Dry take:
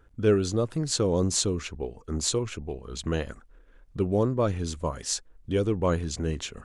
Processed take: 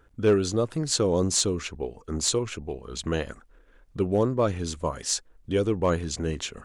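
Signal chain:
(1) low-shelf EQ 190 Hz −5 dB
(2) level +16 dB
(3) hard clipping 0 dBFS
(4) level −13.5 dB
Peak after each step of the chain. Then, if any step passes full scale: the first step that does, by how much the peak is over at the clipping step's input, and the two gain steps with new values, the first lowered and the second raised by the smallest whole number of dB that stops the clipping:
−10.5, +5.5, 0.0, −13.5 dBFS
step 2, 5.5 dB
step 2 +10 dB, step 4 −7.5 dB

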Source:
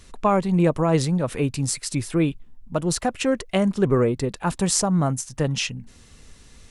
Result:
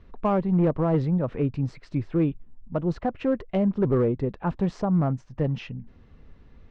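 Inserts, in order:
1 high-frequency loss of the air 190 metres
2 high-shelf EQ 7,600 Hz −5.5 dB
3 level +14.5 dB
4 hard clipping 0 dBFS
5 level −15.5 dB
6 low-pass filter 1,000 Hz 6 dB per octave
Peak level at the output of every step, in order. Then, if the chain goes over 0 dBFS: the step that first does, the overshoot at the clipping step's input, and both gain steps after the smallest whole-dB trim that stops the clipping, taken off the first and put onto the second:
−8.0, −8.0, +6.5, 0.0, −15.5, −15.5 dBFS
step 3, 6.5 dB
step 3 +7.5 dB, step 5 −8.5 dB

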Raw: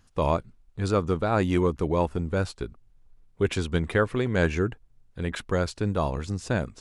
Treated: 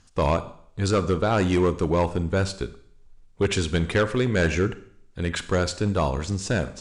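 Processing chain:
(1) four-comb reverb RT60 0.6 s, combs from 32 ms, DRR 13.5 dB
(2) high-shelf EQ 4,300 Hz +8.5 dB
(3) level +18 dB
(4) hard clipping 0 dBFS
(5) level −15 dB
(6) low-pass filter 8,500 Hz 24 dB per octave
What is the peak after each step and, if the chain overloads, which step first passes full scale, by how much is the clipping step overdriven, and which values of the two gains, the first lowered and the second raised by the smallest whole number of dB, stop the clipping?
−9.0, −8.5, +9.5, 0.0, −15.0, −13.5 dBFS
step 3, 9.5 dB
step 3 +8 dB, step 5 −5 dB

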